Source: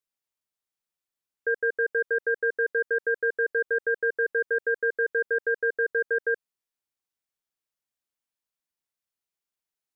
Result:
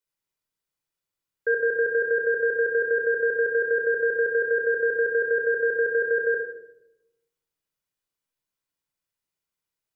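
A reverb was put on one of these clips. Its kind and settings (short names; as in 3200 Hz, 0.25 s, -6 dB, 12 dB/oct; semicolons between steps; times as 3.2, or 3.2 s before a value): shoebox room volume 3000 m³, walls furnished, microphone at 4.8 m; gain -1.5 dB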